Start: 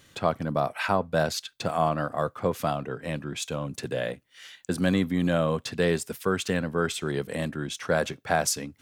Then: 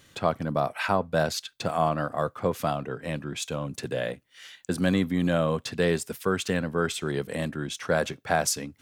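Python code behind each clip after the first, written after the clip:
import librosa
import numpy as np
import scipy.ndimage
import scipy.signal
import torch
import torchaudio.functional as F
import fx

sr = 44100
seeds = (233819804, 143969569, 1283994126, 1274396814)

y = x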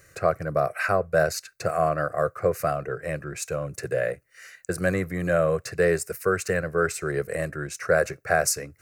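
y = fx.fixed_phaser(x, sr, hz=910.0, stages=6)
y = y * librosa.db_to_amplitude(5.0)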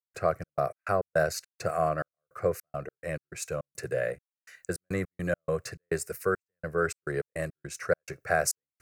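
y = fx.step_gate(x, sr, bpm=104, pattern='.xx.x.x.xx.xxx.', floor_db=-60.0, edge_ms=4.5)
y = y * librosa.db_to_amplitude(-4.0)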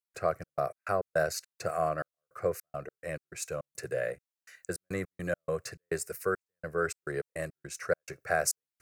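y = fx.bass_treble(x, sr, bass_db=-3, treble_db=2)
y = y * librosa.db_to_amplitude(-2.5)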